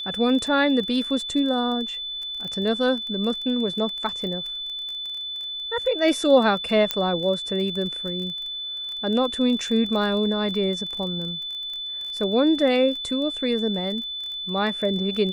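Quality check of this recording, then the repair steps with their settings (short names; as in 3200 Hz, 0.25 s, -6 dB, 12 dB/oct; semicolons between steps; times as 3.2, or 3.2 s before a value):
crackle 22/s -30 dBFS
tone 3500 Hz -29 dBFS
6.91 pop -6 dBFS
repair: de-click; notch 3500 Hz, Q 30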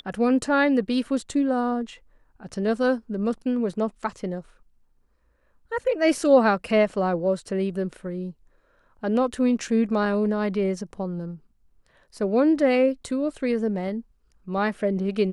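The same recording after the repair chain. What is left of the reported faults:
none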